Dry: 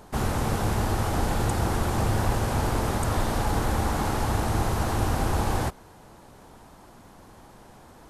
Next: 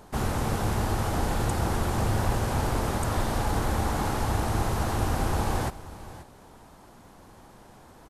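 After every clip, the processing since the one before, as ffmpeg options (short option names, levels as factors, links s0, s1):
-af "aecho=1:1:532:0.158,volume=0.841"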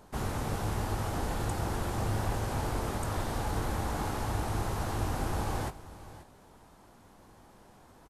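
-filter_complex "[0:a]asplit=2[s0][s1];[s1]adelay=20,volume=0.282[s2];[s0][s2]amix=inputs=2:normalize=0,volume=0.501"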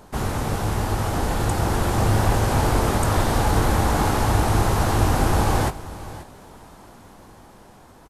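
-af "dynaudnorm=f=680:g=5:m=1.68,volume=2.66"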